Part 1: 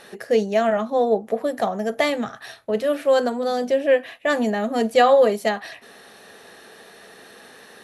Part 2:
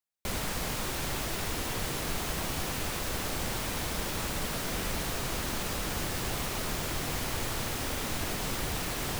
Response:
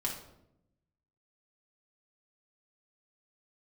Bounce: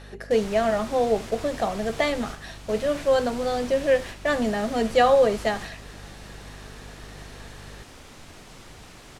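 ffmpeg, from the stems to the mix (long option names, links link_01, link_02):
-filter_complex "[0:a]aeval=exprs='val(0)+0.01*(sin(2*PI*50*n/s)+sin(2*PI*2*50*n/s)/2+sin(2*PI*3*50*n/s)/3+sin(2*PI*4*50*n/s)/4+sin(2*PI*5*50*n/s)/5)':channel_layout=same,volume=-3dB,asplit=3[link_01][link_02][link_03];[link_02]volume=-20dB[link_04];[1:a]volume=-6dB,asplit=2[link_05][link_06];[link_06]volume=-6dB[link_07];[link_03]apad=whole_len=405620[link_08];[link_05][link_08]sidechaingate=range=-33dB:threshold=-35dB:ratio=16:detection=peak[link_09];[link_04][link_07]amix=inputs=2:normalize=0,aecho=0:1:73:1[link_10];[link_01][link_09][link_10]amix=inputs=3:normalize=0,lowpass=8700"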